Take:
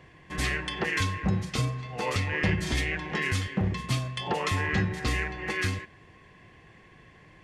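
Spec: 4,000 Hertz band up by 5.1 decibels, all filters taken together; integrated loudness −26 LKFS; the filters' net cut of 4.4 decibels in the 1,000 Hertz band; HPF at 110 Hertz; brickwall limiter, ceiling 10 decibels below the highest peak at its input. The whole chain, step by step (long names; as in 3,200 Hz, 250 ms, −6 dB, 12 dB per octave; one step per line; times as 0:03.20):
high-pass filter 110 Hz
parametric band 1,000 Hz −5.5 dB
parametric band 4,000 Hz +7 dB
level +7 dB
brickwall limiter −16 dBFS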